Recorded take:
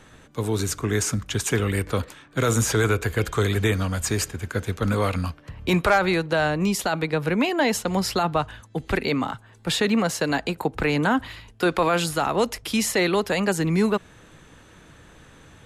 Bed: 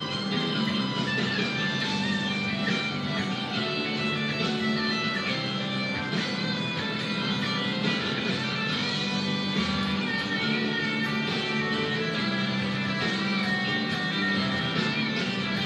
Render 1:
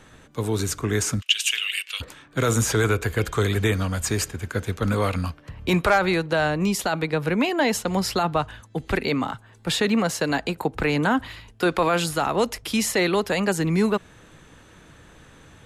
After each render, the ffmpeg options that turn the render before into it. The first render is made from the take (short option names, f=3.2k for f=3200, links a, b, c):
-filter_complex "[0:a]asplit=3[a][b][c];[a]afade=t=out:st=1.2:d=0.02[d];[b]highpass=f=2.8k:t=q:w=7.9,afade=t=in:st=1.2:d=0.02,afade=t=out:st=2:d=0.02[e];[c]afade=t=in:st=2:d=0.02[f];[d][e][f]amix=inputs=3:normalize=0"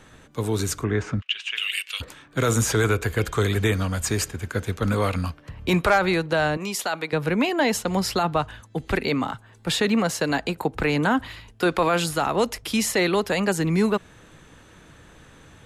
-filter_complex "[0:a]asplit=3[a][b][c];[a]afade=t=out:st=0.83:d=0.02[d];[b]lowpass=2.2k,afade=t=in:st=0.83:d=0.02,afade=t=out:st=1.56:d=0.02[e];[c]afade=t=in:st=1.56:d=0.02[f];[d][e][f]amix=inputs=3:normalize=0,asettb=1/sr,asplit=3[g][h][i];[g]atrim=end=6.574[j];[h]atrim=start=6.57:end=7.13,asetpts=PTS-STARTPTS,afade=t=in:d=0.004:c=qsin,afade=t=out:st=0.556:d=0.004:c=qsin,highpass=f=610:p=1[k];[i]atrim=start=7.126[l];[j][k]acrossfade=d=0.004:c1=hsin:c2=qsin[m];[m][l]acrossfade=d=0.004:c1=qsin:c2=hsin"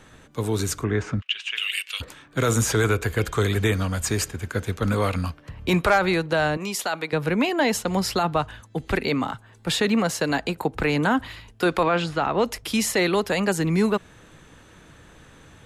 -filter_complex "[0:a]asettb=1/sr,asplit=3[a][b][c];[a]atrim=end=11.834[d];[b]atrim=start=11.83:end=12.45,asetpts=PTS-STARTPTS,afade=t=in:d=0.004:c=qsin,afade=t=out:st=0.616:d=0.004:c=qsin,lowpass=3.5k[e];[c]atrim=start=12.446[f];[d][e]acrossfade=d=0.004:c1=hsin:c2=qsin[g];[g][f]acrossfade=d=0.004:c1=qsin:c2=hsin"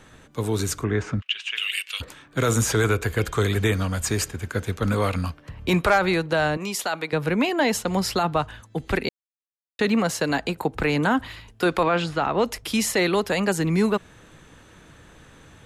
-filter_complex "[0:a]asplit=3[a][b][c];[a]atrim=end=9.09,asetpts=PTS-STARTPTS,afade=t=out:st=9.086:d=0.004:c=hsin[d];[b]atrim=start=9.09:end=9.79,asetpts=PTS-STARTPTS,volume=0[e];[c]atrim=start=9.79,asetpts=PTS-STARTPTS,afade=t=in:d=0.004:c=hsin[f];[d][e][f]concat=n=3:v=0:a=1"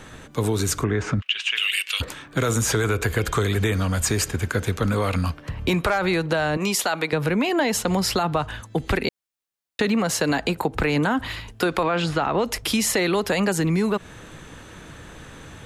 -filter_complex "[0:a]asplit=2[a][b];[b]alimiter=limit=-20dB:level=0:latency=1,volume=3dB[c];[a][c]amix=inputs=2:normalize=0,acompressor=threshold=-18dB:ratio=6"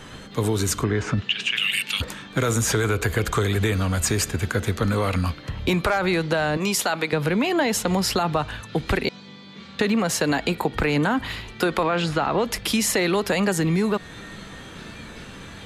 -filter_complex "[1:a]volume=-15.5dB[a];[0:a][a]amix=inputs=2:normalize=0"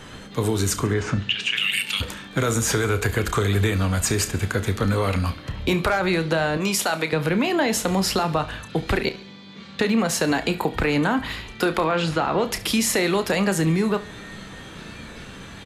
-filter_complex "[0:a]asplit=2[a][b];[b]adelay=31,volume=-11.5dB[c];[a][c]amix=inputs=2:normalize=0,aecho=1:1:70|140|210|280:0.126|0.0604|0.029|0.0139"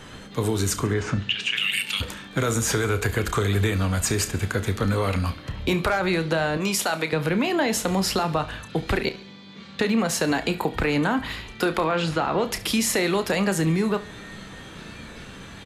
-af "volume=-1.5dB"